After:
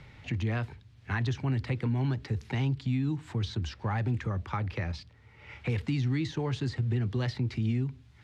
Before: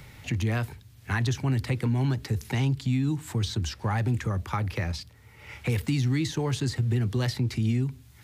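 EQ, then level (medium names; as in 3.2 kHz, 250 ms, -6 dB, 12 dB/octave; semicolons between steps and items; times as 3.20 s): low-pass 4 kHz 12 dB/octave; -3.5 dB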